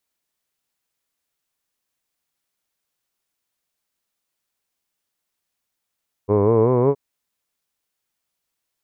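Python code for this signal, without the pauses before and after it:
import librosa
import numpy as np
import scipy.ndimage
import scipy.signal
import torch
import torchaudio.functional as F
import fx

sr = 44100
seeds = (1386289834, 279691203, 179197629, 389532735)

y = fx.vowel(sr, seeds[0], length_s=0.67, word='hood', hz=97.5, glide_st=6.0, vibrato_hz=5.3, vibrato_st=0.9)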